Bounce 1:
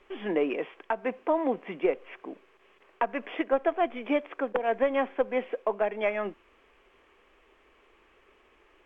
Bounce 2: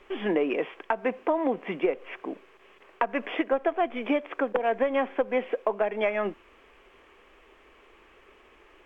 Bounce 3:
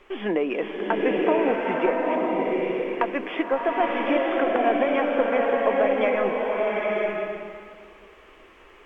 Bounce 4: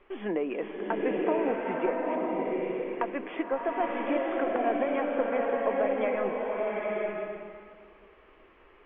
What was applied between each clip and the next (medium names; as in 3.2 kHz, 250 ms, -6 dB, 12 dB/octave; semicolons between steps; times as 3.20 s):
compression 3:1, threshold -28 dBFS, peak gain reduction 7 dB; trim +5.5 dB
swelling reverb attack 950 ms, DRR -2.5 dB; trim +1 dB
distance through air 330 m; trim -5 dB